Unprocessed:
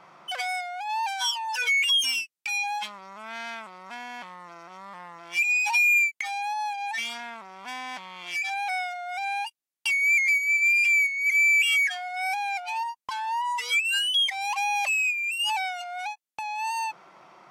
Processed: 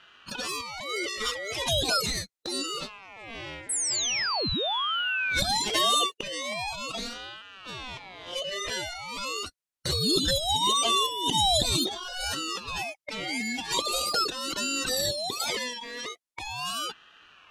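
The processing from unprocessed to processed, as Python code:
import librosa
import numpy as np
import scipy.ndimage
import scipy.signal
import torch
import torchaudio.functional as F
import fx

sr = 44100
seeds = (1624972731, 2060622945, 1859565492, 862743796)

y = fx.formant_shift(x, sr, semitones=-5)
y = fx.spec_paint(y, sr, seeds[0], shape='fall', start_s=3.69, length_s=1.71, low_hz=350.0, high_hz=9800.0, level_db=-25.0)
y = fx.ring_lfo(y, sr, carrier_hz=1700.0, swing_pct=30, hz=0.41)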